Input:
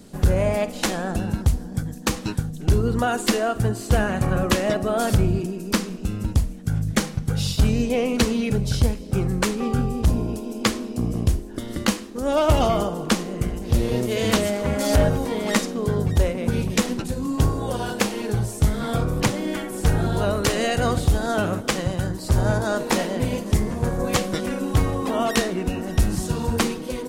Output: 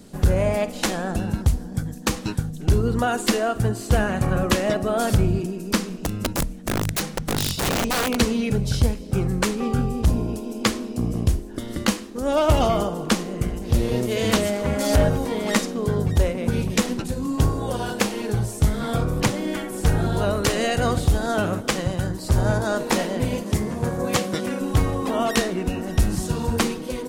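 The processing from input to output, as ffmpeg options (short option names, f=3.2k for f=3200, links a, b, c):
-filter_complex "[0:a]asettb=1/sr,asplit=3[a][b][c];[a]atrim=end=5.944[d];[b]atrim=start=5.94:end=8.2,asetpts=PTS-STARTPTS,afade=t=in:d=0.004:c=qsin,afade=t=out:st=2.256:d=0.004:c=qsin,aeval=exprs='(mod(7.08*val(0)+1,2)-1)/7.08':c=same[e];[c]atrim=start=8.196[f];[d][e]acrossfade=d=0.004:c1=hsin:c2=qsin[g];[g][f]acrossfade=d=0.004:c1=qsin:c2=hsin,asettb=1/sr,asplit=3[h][i][j];[h]atrim=end=23.434[k];[i]atrim=start=23.43:end=24.61,asetpts=PTS-STARTPTS,afade=t=in:d=0.004:c=qsin,afade=t=out:st=1.176:d=0.004:c=qsin,highpass=88[l];[j]atrim=start=24.606[m];[k][l]acrossfade=d=0.004:c1=hsin:c2=qsin[n];[n][m]acrossfade=d=0.004:c1=qsin:c2=hsin"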